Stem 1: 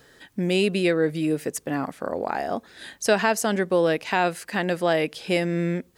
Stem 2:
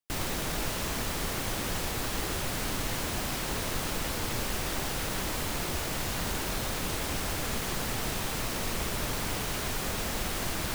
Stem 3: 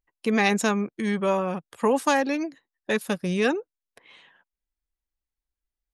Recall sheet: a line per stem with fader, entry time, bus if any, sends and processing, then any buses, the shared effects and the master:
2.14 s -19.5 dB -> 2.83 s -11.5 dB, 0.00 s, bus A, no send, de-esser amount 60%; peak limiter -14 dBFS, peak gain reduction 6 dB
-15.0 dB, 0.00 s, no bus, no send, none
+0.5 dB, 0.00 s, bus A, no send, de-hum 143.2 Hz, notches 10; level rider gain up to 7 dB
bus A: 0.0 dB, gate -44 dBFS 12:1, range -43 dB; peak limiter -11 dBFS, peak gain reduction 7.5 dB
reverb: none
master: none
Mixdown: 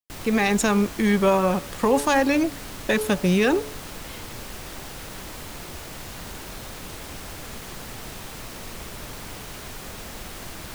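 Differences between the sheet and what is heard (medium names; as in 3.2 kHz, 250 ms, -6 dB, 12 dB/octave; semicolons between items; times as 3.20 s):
stem 1: muted; stem 2 -15.0 dB -> -5.0 dB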